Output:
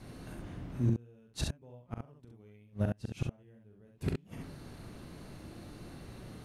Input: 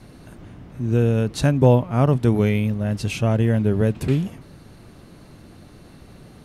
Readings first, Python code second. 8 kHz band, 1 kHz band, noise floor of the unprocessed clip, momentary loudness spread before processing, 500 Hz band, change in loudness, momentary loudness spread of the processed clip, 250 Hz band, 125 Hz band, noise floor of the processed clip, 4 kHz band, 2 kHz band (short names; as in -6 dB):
-12.0 dB, -22.5 dB, -46 dBFS, 8 LU, -23.5 dB, -19.5 dB, 18 LU, -18.0 dB, -17.5 dB, -61 dBFS, -12.0 dB, -18.5 dB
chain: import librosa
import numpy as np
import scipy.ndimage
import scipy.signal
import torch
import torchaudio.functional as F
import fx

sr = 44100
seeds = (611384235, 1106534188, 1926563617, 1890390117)

y = fx.gate_flip(x, sr, shuts_db=-15.0, range_db=-36)
y = fx.room_early_taps(y, sr, ms=(41, 67), db=(-7.0, -3.5))
y = F.gain(torch.from_numpy(y), -5.0).numpy()